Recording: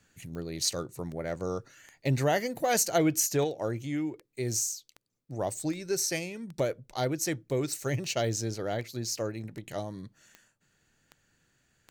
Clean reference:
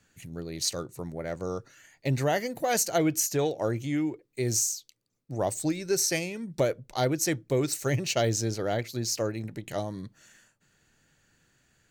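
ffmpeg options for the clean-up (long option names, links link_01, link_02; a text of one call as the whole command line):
ffmpeg -i in.wav -af "adeclick=threshold=4,asetnsamples=nb_out_samples=441:pad=0,asendcmd='3.44 volume volume 3.5dB',volume=0dB" out.wav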